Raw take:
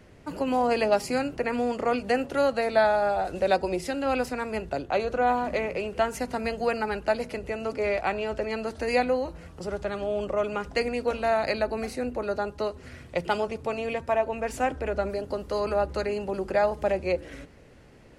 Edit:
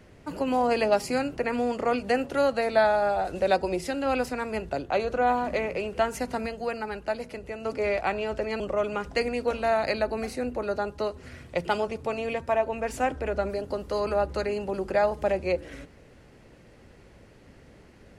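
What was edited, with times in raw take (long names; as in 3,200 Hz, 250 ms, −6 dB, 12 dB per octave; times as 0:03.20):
0:06.46–0:07.65: clip gain −4.5 dB
0:08.60–0:10.20: remove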